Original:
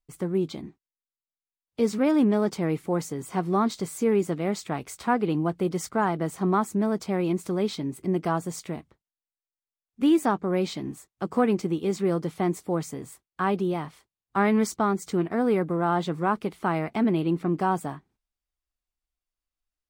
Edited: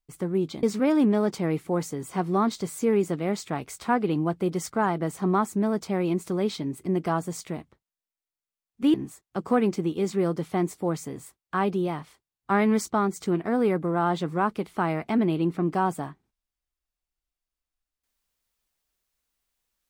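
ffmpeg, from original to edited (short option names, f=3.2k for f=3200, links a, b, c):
-filter_complex "[0:a]asplit=3[a][b][c];[a]atrim=end=0.632[d];[b]atrim=start=1.818:end=10.132[e];[c]atrim=start=10.798[f];[d][e]acrossfade=d=0.004:c1=hsin:c2=hsin[g];[g][f]acrossfade=d=0.004:c1=hsin:c2=hsin"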